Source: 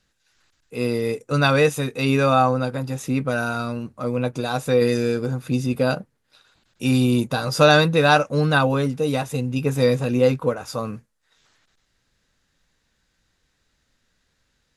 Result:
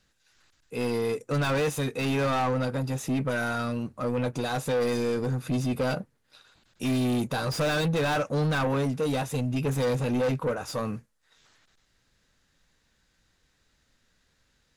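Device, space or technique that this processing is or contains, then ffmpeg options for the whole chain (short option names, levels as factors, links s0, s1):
saturation between pre-emphasis and de-emphasis: -af "highshelf=f=2900:g=12,asoftclip=type=tanh:threshold=0.0794,highshelf=f=2900:g=-12"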